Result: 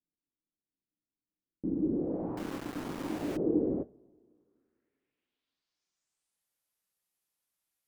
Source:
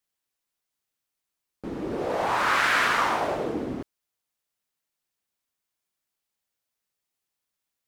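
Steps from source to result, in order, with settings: low-pass sweep 290 Hz -> 12000 Hz, 3.31–6.48; two-slope reverb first 0.24 s, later 2.2 s, from -22 dB, DRR 12 dB; 2.37–3.37 sample gate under -34.5 dBFS; gain -3.5 dB

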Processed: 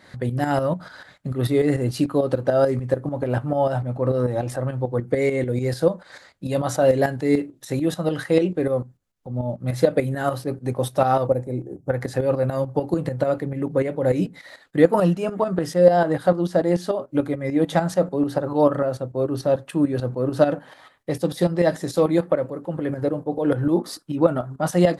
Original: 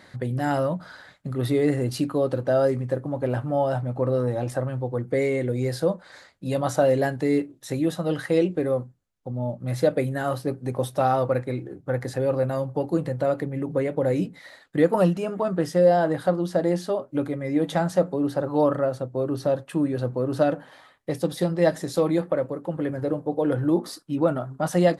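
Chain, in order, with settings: 11.27–11.9 band shelf 2200 Hz -14.5 dB 2.3 oct; tremolo saw up 6.8 Hz, depth 65%; gain +5.5 dB

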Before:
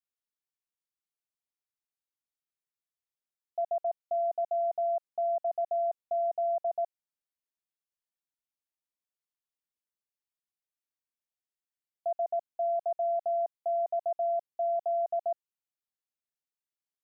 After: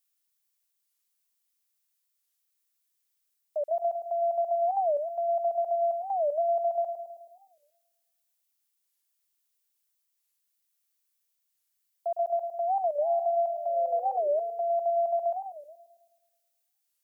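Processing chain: tilt +4 dB/oct; painted sound fall, 13.01–14.19, 430–860 Hz -46 dBFS; on a send: darkening echo 0.107 s, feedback 72%, low-pass 830 Hz, level -5.5 dB; on the sum: record warp 45 rpm, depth 250 cents; gain +3 dB

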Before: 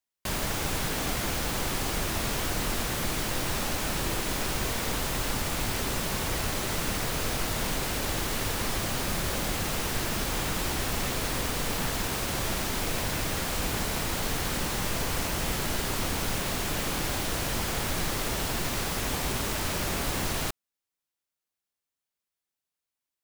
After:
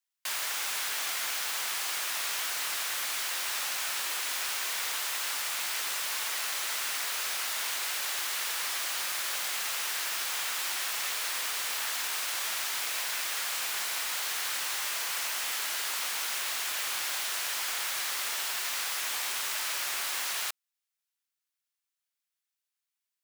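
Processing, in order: HPF 1300 Hz 12 dB/oct; gain +1 dB

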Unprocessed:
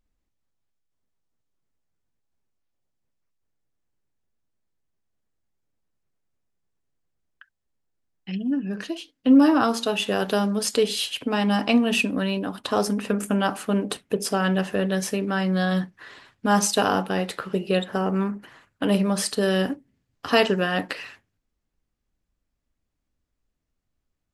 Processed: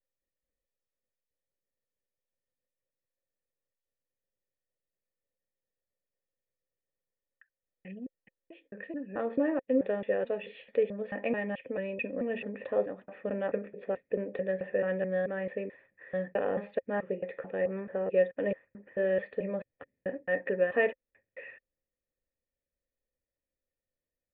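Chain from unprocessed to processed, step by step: slices in reverse order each 0.218 s, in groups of 3; vocal tract filter e; gain +3.5 dB

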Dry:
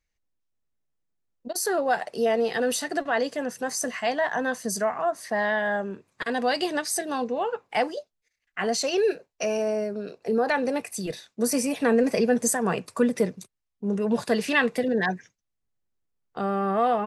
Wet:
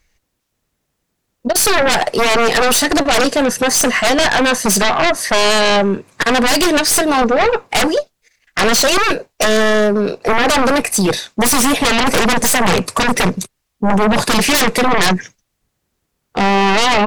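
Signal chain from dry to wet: added harmonics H 4 -14 dB, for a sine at -9.5 dBFS; sine folder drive 16 dB, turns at -9.5 dBFS

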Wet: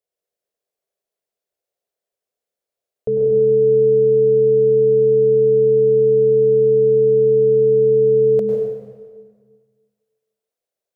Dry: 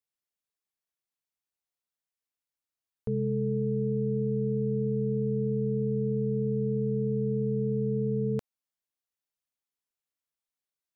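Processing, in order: band shelf 520 Hz +15 dB 1.1 oct; plate-style reverb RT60 1.7 s, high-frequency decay 0.8×, pre-delay 90 ms, DRR -0.5 dB

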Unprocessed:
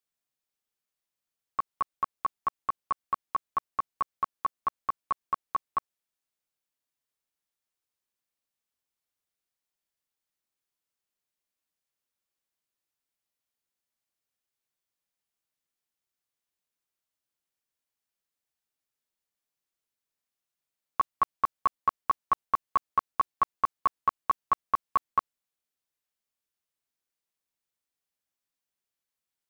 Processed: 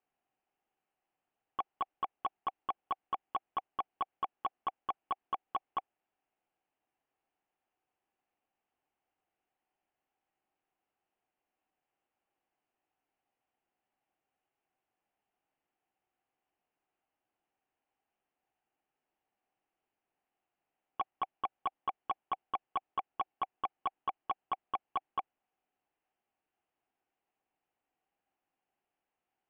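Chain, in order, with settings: bell 770 Hz +14 dB 0.37 oct; soft clip -32.5 dBFS, distortion -5 dB; elliptic low-pass 2900 Hz; bell 330 Hz +8 dB 1.1 oct; gain +3.5 dB

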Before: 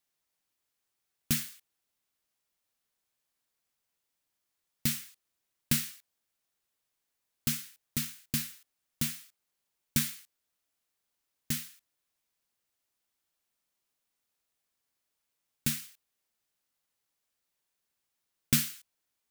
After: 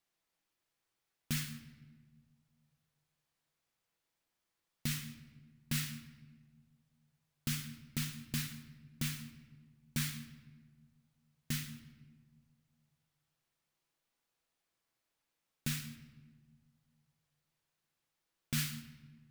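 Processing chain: high shelf 5600 Hz -8.5 dB; limiter -24.5 dBFS, peak gain reduction 12 dB; shoebox room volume 1200 m³, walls mixed, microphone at 0.71 m; gain +1 dB

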